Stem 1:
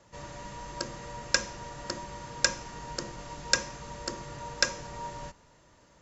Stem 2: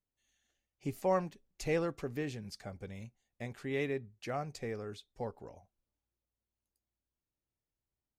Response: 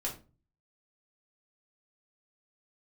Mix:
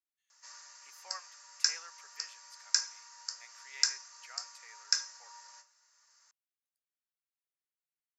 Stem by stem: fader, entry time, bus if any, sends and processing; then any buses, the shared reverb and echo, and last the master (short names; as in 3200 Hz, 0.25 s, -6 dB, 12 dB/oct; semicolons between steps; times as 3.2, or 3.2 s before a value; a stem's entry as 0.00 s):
-2.5 dB, 0.30 s, send -7.5 dB, resonant high shelf 4100 Hz +7 dB, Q 3; auto duck -10 dB, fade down 0.35 s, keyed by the second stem
-1.0 dB, 0.00 s, no send, dry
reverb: on, RT60 0.35 s, pre-delay 3 ms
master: ladder high-pass 1100 Hz, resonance 30%